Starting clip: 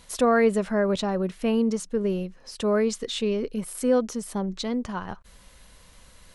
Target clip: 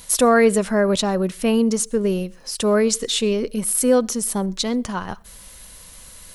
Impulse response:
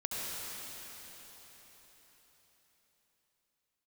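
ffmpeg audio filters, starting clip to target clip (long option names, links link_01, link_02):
-filter_complex "[0:a]aemphasis=mode=production:type=50fm,asplit=2[link_01][link_02];[1:a]atrim=start_sample=2205,atrim=end_sample=6174[link_03];[link_02][link_03]afir=irnorm=-1:irlink=0,volume=-24dB[link_04];[link_01][link_04]amix=inputs=2:normalize=0,volume=5dB"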